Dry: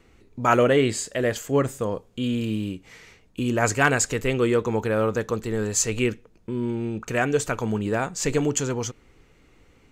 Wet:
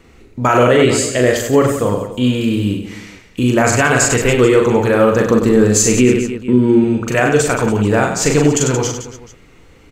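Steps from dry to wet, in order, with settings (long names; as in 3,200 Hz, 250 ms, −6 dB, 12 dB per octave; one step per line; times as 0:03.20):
0:05.20–0:06.84: parametric band 250 Hz +8.5 dB 1.4 octaves
reverse bouncing-ball delay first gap 40 ms, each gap 1.4×, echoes 5
boost into a limiter +10 dB
level −1 dB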